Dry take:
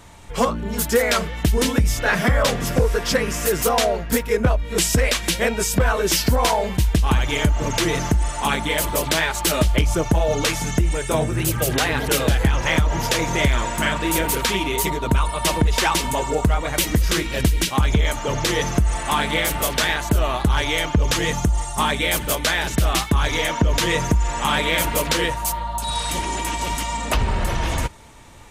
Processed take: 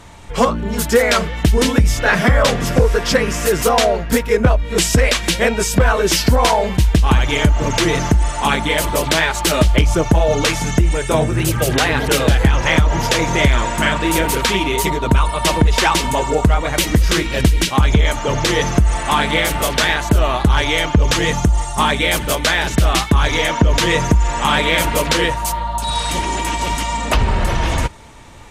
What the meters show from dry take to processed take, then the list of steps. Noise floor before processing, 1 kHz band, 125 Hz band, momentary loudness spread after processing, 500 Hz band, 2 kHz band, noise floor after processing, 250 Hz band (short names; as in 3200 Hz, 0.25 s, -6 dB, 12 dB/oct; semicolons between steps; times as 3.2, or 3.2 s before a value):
-29 dBFS, +5.0 dB, +5.0 dB, 4 LU, +5.0 dB, +5.0 dB, -24 dBFS, +5.0 dB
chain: high shelf 11000 Hz -10.5 dB; gain +5 dB